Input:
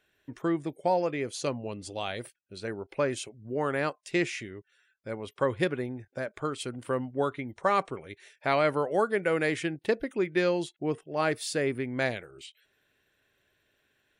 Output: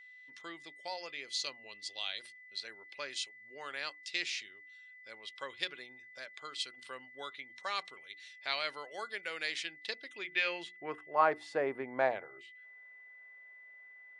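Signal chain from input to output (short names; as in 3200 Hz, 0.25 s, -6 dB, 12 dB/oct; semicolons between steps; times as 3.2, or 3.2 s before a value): LPF 9900 Hz; notches 60/120/180/240/300/360 Hz; band-pass sweep 4200 Hz -> 860 Hz, 10.06–11.36; whine 2000 Hz -59 dBFS; gain +6.5 dB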